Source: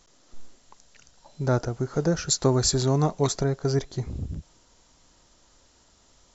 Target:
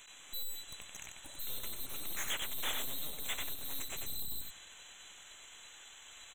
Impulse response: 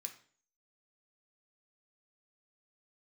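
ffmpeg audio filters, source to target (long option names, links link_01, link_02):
-af "afftfilt=real='real(if(lt(b,736),b+184*(1-2*mod(floor(b/184),2)),b),0)':imag='imag(if(lt(b,736),b+184*(1-2*mod(floor(b/184),2)),b),0)':win_size=2048:overlap=0.75,highpass=520,highshelf=frequency=3000:gain=10,alimiter=limit=-18.5dB:level=0:latency=1:release=180,aeval=exprs='(tanh(89.1*val(0)+0.6)-tanh(0.6))/89.1':channel_layout=same,asuperstop=centerf=4800:order=12:qfactor=2.2,aecho=1:1:93:0.596,volume=5dB"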